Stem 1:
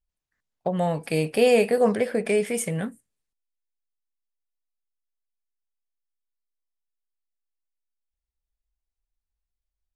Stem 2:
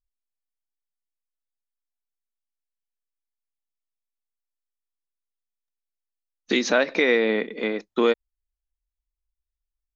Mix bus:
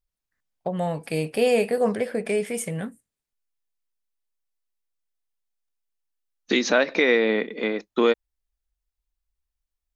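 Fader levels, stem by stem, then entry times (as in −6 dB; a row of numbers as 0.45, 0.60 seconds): −2.0, +0.5 decibels; 0.00, 0.00 seconds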